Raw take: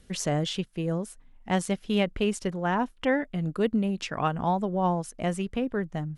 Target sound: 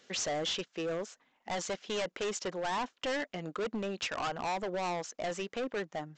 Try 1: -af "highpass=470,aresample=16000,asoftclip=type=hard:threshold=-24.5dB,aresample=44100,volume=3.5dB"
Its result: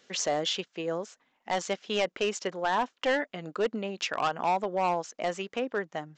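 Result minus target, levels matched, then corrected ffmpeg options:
hard clip: distortion -8 dB
-af "highpass=470,aresample=16000,asoftclip=type=hard:threshold=-34.5dB,aresample=44100,volume=3.5dB"

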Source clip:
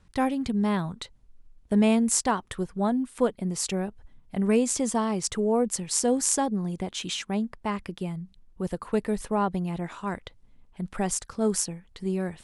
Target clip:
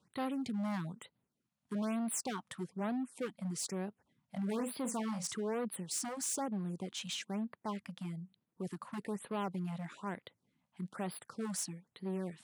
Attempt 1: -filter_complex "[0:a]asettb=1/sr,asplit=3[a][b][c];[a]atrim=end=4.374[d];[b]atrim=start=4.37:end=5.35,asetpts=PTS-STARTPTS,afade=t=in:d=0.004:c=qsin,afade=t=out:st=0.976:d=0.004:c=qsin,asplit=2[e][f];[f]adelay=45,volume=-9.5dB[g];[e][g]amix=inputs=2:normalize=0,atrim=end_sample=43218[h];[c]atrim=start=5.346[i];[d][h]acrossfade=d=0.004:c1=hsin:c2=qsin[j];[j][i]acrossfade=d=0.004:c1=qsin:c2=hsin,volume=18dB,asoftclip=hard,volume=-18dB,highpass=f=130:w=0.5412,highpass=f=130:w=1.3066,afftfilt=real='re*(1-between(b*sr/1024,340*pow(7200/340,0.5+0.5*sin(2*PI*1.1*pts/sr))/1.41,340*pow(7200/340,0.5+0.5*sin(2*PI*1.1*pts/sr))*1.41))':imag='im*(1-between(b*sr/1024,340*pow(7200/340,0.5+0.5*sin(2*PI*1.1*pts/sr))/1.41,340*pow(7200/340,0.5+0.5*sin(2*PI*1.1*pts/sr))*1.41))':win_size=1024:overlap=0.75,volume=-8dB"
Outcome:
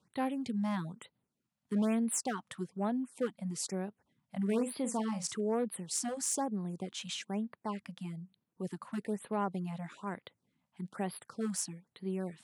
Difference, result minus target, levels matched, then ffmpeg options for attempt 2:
overloaded stage: distortion -9 dB
-filter_complex "[0:a]asettb=1/sr,asplit=3[a][b][c];[a]atrim=end=4.374[d];[b]atrim=start=4.37:end=5.35,asetpts=PTS-STARTPTS,afade=t=in:d=0.004:c=qsin,afade=t=out:st=0.976:d=0.004:c=qsin,asplit=2[e][f];[f]adelay=45,volume=-9.5dB[g];[e][g]amix=inputs=2:normalize=0,atrim=end_sample=43218[h];[c]atrim=start=5.346[i];[d][h]acrossfade=d=0.004:c1=hsin:c2=qsin[j];[j][i]acrossfade=d=0.004:c1=qsin:c2=hsin,volume=25.5dB,asoftclip=hard,volume=-25.5dB,highpass=f=130:w=0.5412,highpass=f=130:w=1.3066,afftfilt=real='re*(1-between(b*sr/1024,340*pow(7200/340,0.5+0.5*sin(2*PI*1.1*pts/sr))/1.41,340*pow(7200/340,0.5+0.5*sin(2*PI*1.1*pts/sr))*1.41))':imag='im*(1-between(b*sr/1024,340*pow(7200/340,0.5+0.5*sin(2*PI*1.1*pts/sr))/1.41,340*pow(7200/340,0.5+0.5*sin(2*PI*1.1*pts/sr))*1.41))':win_size=1024:overlap=0.75,volume=-8dB"

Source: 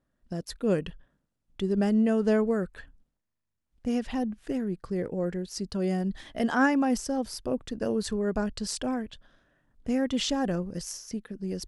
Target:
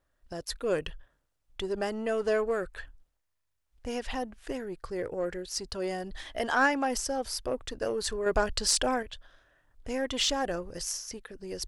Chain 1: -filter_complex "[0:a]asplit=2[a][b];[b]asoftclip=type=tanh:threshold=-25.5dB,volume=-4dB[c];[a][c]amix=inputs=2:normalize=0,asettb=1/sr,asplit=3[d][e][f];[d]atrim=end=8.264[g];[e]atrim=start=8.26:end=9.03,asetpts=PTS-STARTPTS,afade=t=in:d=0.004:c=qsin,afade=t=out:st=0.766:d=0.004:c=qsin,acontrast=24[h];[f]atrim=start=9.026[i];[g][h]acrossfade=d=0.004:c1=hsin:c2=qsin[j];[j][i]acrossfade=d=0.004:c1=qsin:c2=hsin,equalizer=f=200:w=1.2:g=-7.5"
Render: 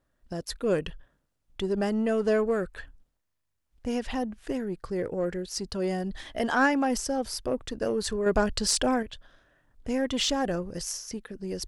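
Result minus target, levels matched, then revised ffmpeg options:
250 Hz band +5.0 dB
-filter_complex "[0:a]asplit=2[a][b];[b]asoftclip=type=tanh:threshold=-25.5dB,volume=-4dB[c];[a][c]amix=inputs=2:normalize=0,asettb=1/sr,asplit=3[d][e][f];[d]atrim=end=8.264[g];[e]atrim=start=8.26:end=9.03,asetpts=PTS-STARTPTS,afade=t=in:d=0.004:c=qsin,afade=t=out:st=0.766:d=0.004:c=qsin,acontrast=24[h];[f]atrim=start=9.026[i];[g][h]acrossfade=d=0.004:c1=hsin:c2=qsin[j];[j][i]acrossfade=d=0.004:c1=qsin:c2=hsin,equalizer=f=200:w=1.2:g=-18"

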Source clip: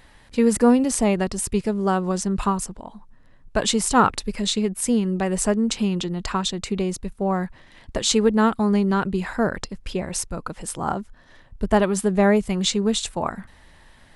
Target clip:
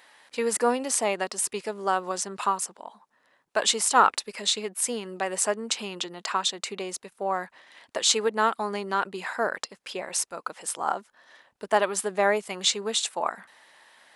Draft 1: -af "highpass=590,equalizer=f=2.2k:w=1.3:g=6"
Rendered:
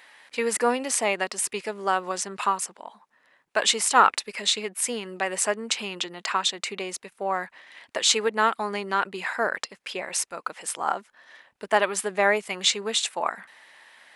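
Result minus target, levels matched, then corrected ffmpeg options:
2000 Hz band +2.5 dB
-af "highpass=590"

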